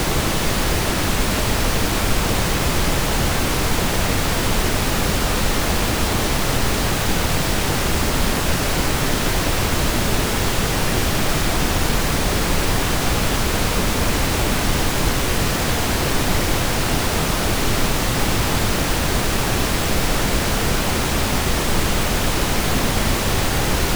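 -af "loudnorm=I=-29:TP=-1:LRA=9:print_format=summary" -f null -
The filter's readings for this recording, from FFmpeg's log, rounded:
Input Integrated:    -19.7 LUFS
Input True Peak:      -3.8 dBTP
Input LRA:             0.1 LU
Input Threshold:     -29.7 LUFS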